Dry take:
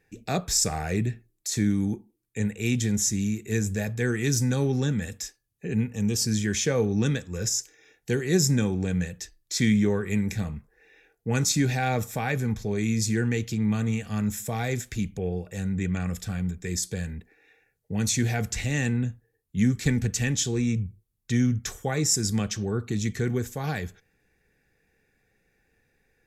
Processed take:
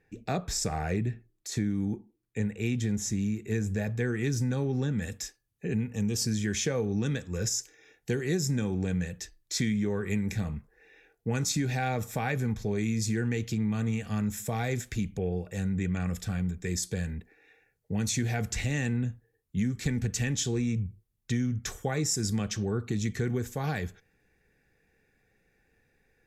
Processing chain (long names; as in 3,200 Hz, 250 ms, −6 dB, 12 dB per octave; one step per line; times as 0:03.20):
high-shelf EQ 3,900 Hz −11 dB, from 0:04.98 −3.5 dB
downward compressor, threshold −25 dBFS, peak gain reduction 8.5 dB